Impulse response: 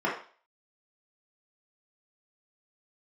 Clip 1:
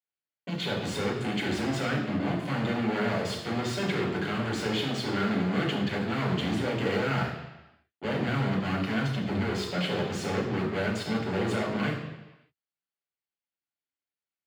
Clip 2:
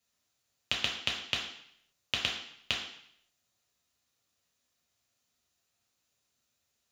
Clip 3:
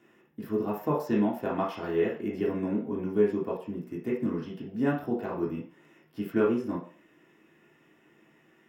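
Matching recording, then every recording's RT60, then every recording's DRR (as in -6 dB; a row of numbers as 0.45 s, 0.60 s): 3; 1.0 s, 0.65 s, 0.40 s; -3.5 dB, -2.5 dB, -6.5 dB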